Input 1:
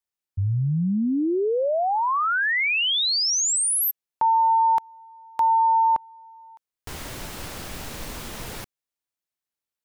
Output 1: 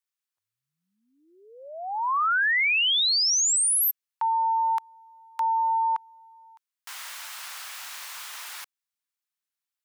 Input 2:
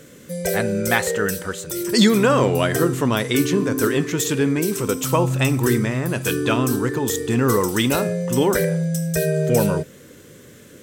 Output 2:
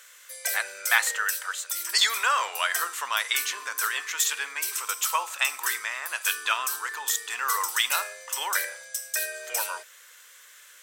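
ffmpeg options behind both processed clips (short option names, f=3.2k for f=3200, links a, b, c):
-af "highpass=f=1k:w=0.5412,highpass=f=1k:w=1.3066"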